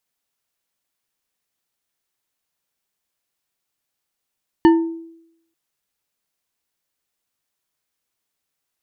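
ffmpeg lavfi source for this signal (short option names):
-f lavfi -i "aevalsrc='0.501*pow(10,-3*t/0.78)*sin(2*PI*330*t)+0.211*pow(10,-3*t/0.384)*sin(2*PI*909.8*t)+0.0891*pow(10,-3*t/0.239)*sin(2*PI*1783.3*t)+0.0376*pow(10,-3*t/0.168)*sin(2*PI*2947.9*t)+0.0158*pow(10,-3*t/0.127)*sin(2*PI*4402.2*t)':d=0.89:s=44100"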